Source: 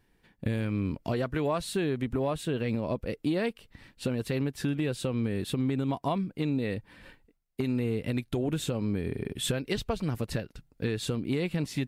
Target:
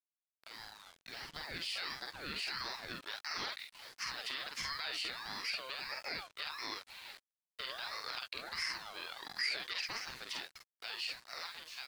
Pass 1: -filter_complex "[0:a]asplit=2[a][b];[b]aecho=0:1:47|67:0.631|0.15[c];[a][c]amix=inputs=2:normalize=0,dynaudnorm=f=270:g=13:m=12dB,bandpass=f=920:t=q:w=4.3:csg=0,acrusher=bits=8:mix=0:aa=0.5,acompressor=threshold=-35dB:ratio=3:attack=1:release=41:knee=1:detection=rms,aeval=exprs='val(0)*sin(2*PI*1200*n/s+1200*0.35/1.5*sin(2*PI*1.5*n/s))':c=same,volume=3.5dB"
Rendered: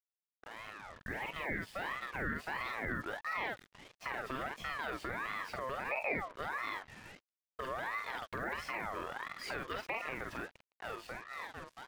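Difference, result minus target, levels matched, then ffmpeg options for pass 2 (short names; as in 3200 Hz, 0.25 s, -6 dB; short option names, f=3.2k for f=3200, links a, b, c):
4000 Hz band -12.0 dB
-filter_complex "[0:a]asplit=2[a][b];[b]aecho=0:1:47|67:0.631|0.15[c];[a][c]amix=inputs=2:normalize=0,dynaudnorm=f=270:g=13:m=12dB,bandpass=f=3.3k:t=q:w=4.3:csg=0,acrusher=bits=8:mix=0:aa=0.5,acompressor=threshold=-35dB:ratio=3:attack=1:release=41:knee=1:detection=rms,aeval=exprs='val(0)*sin(2*PI*1200*n/s+1200*0.35/1.5*sin(2*PI*1.5*n/s))':c=same,volume=3.5dB"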